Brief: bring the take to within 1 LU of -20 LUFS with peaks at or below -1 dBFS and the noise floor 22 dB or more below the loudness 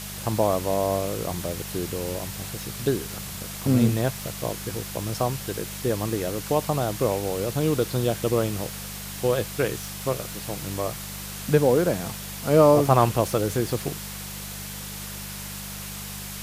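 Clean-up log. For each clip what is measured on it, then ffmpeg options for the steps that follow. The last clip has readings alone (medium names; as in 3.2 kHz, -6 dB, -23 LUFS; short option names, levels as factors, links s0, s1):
hum 50 Hz; highest harmonic 200 Hz; hum level -38 dBFS; noise floor -36 dBFS; noise floor target -48 dBFS; loudness -26.0 LUFS; peak level -4.0 dBFS; loudness target -20.0 LUFS
-> -af "bandreject=f=50:t=h:w=4,bandreject=f=100:t=h:w=4,bandreject=f=150:t=h:w=4,bandreject=f=200:t=h:w=4"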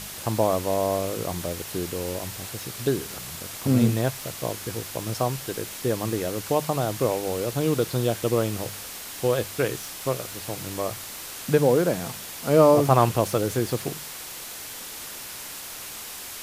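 hum not found; noise floor -38 dBFS; noise floor target -48 dBFS
-> -af "afftdn=nr=10:nf=-38"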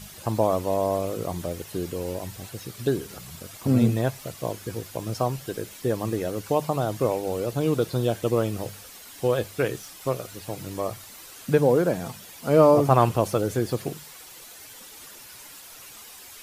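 noise floor -45 dBFS; noise floor target -48 dBFS
-> -af "afftdn=nr=6:nf=-45"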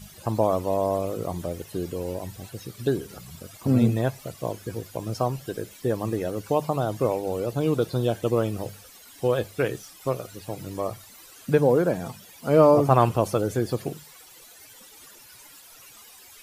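noise floor -49 dBFS; loudness -25.5 LUFS; peak level -4.0 dBFS; loudness target -20.0 LUFS
-> -af "volume=1.88,alimiter=limit=0.891:level=0:latency=1"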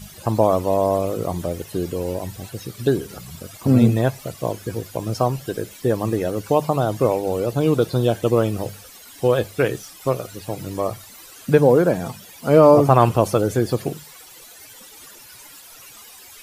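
loudness -20.0 LUFS; peak level -1.0 dBFS; noise floor -44 dBFS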